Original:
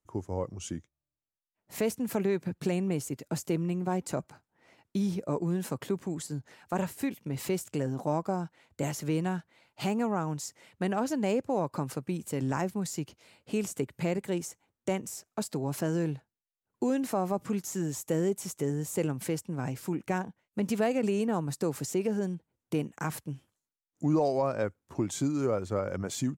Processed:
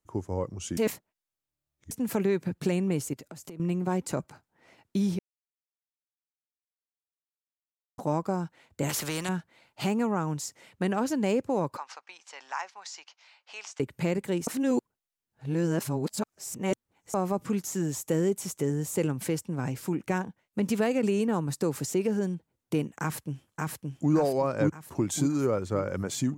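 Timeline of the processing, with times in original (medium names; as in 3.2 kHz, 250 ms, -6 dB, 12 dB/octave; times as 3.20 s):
0.77–1.91 s: reverse
3.13–3.60 s: compression 12:1, threshold -42 dBFS
5.19–7.98 s: mute
8.89–9.29 s: spectrum-flattening compressor 2:1
11.77–13.80 s: Chebyshev band-pass 820–5900 Hz, order 3
14.47–17.14 s: reverse
23.01–24.12 s: echo throw 570 ms, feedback 45%, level -1.5 dB
24.82–25.45 s: peaking EQ 13 kHz +5.5 dB 1.2 oct
whole clip: dynamic bell 690 Hz, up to -5 dB, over -46 dBFS, Q 4.1; trim +2.5 dB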